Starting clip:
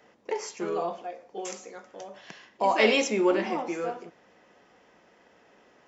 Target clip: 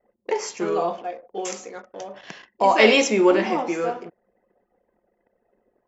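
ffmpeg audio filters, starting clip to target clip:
ffmpeg -i in.wav -af "anlmdn=0.00398,volume=6.5dB" out.wav

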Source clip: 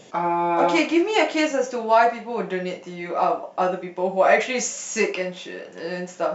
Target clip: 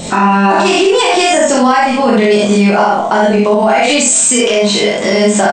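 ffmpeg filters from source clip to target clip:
ffmpeg -i in.wav -filter_complex "[0:a]bandreject=frequency=60:width_type=h:width=6,bandreject=frequency=120:width_type=h:width=6,bandreject=frequency=180:width_type=h:width=6,asetrate=50715,aresample=44100,bass=frequency=250:gain=15,treble=frequency=4000:gain=1,acompressor=threshold=-25dB:ratio=3,highshelf=frequency=4900:gain=8,asplit=2[link_01][link_02];[link_02]adelay=24,volume=-4dB[link_03];[link_01][link_03]amix=inputs=2:normalize=0,aecho=1:1:41|65:0.668|0.668,alimiter=level_in=18dB:limit=-1dB:release=50:level=0:latency=1,volume=-1dB" out.wav

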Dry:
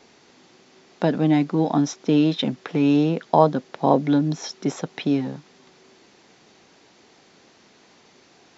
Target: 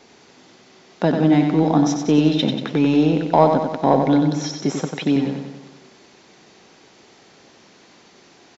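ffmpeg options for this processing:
ffmpeg -i in.wav -filter_complex "[0:a]asplit=2[link_01][link_02];[link_02]asoftclip=type=tanh:threshold=-12.5dB,volume=-5dB[link_03];[link_01][link_03]amix=inputs=2:normalize=0,aecho=1:1:93|186|279|372|465|558|651:0.501|0.281|0.157|0.088|0.0493|0.0276|0.0155,volume=-1dB" out.wav

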